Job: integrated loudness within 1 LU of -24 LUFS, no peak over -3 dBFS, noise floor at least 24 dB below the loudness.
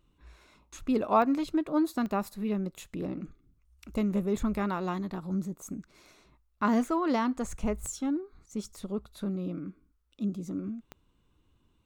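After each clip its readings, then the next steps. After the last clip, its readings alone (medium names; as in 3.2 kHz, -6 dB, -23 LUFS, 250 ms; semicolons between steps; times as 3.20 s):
clicks found 4; loudness -31.5 LUFS; peak level -12.0 dBFS; loudness target -24.0 LUFS
-> de-click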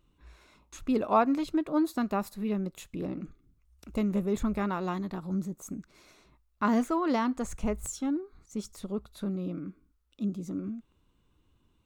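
clicks found 0; loudness -31.5 LUFS; peak level -12.0 dBFS; loudness target -24.0 LUFS
-> trim +7.5 dB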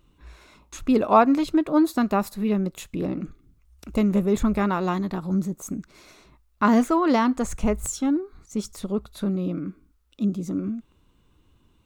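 loudness -24.0 LUFS; peak level -4.5 dBFS; noise floor -62 dBFS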